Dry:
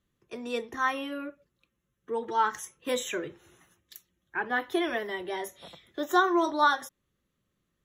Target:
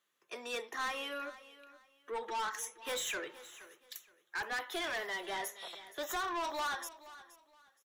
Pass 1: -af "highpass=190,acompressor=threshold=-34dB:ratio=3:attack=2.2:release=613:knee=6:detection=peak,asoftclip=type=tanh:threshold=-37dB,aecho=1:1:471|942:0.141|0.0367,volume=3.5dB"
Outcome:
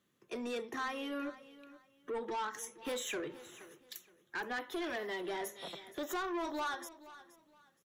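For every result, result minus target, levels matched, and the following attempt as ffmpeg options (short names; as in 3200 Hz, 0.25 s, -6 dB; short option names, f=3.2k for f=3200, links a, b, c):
250 Hz band +9.5 dB; compressor: peak gain reduction +6 dB
-af "highpass=720,acompressor=threshold=-34dB:ratio=3:attack=2.2:release=613:knee=6:detection=peak,asoftclip=type=tanh:threshold=-37dB,aecho=1:1:471|942:0.141|0.0367,volume=3.5dB"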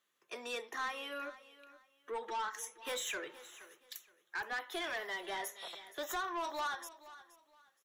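compressor: peak gain reduction +5.5 dB
-af "highpass=720,acompressor=threshold=-25.5dB:ratio=3:attack=2.2:release=613:knee=6:detection=peak,asoftclip=type=tanh:threshold=-37dB,aecho=1:1:471|942:0.141|0.0367,volume=3.5dB"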